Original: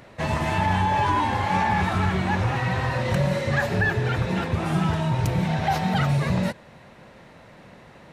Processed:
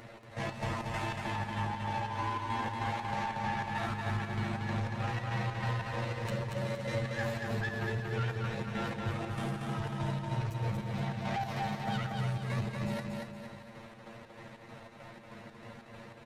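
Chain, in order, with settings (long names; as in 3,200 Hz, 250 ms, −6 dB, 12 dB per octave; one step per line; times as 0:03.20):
downward compressor, threshold −26 dBFS, peak gain reduction 8.5 dB
soft clipping −28.5 dBFS, distortion −12 dB
time stretch by overlap-add 2×, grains 35 ms
square-wave tremolo 3.2 Hz, depth 60%, duty 60%
repeating echo 233 ms, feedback 43%, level −3.5 dB
level −1 dB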